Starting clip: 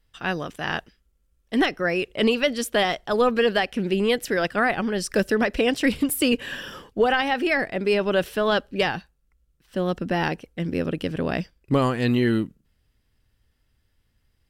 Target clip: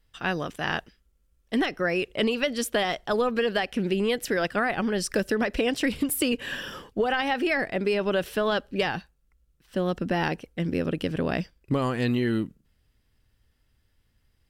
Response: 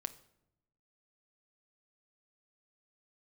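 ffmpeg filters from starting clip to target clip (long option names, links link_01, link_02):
-af "acompressor=threshold=-21dB:ratio=6"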